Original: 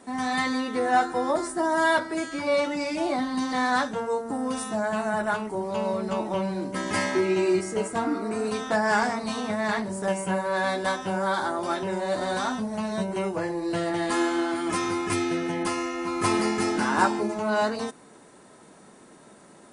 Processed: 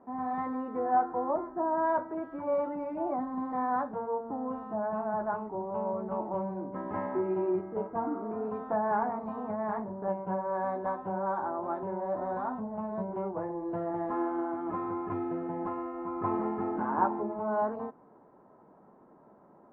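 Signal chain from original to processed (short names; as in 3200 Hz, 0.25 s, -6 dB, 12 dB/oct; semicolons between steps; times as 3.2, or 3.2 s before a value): ladder low-pass 1200 Hz, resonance 35%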